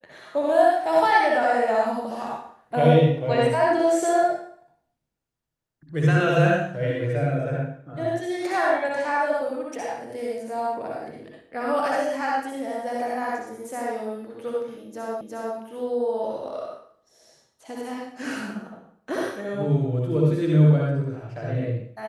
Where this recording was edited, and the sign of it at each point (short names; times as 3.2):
15.21 repeat of the last 0.36 s